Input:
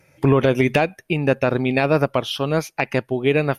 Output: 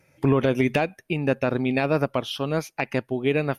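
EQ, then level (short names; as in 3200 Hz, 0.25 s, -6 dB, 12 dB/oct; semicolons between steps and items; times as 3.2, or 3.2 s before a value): bell 250 Hz +3 dB 0.42 oct; -5.0 dB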